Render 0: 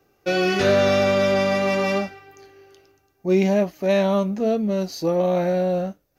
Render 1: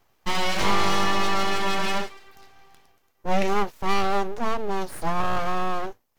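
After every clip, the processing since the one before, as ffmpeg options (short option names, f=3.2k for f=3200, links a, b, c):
-af "lowshelf=f=87:g=-11,aeval=exprs='abs(val(0))':c=same"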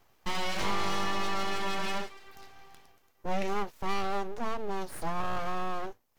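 -af "acompressor=threshold=-40dB:ratio=1.5"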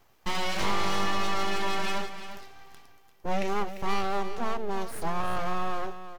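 -af "aecho=1:1:346:0.266,volume=2.5dB"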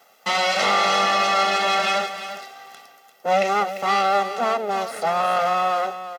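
-filter_complex "[0:a]highpass=f=250:w=0.5412,highpass=f=250:w=1.3066,acrossover=split=7700[a][b];[b]acompressor=threshold=-59dB:ratio=4:attack=1:release=60[c];[a][c]amix=inputs=2:normalize=0,aecho=1:1:1.5:0.79,volume=9dB"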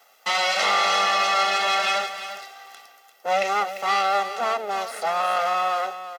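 -af "highpass=f=700:p=1"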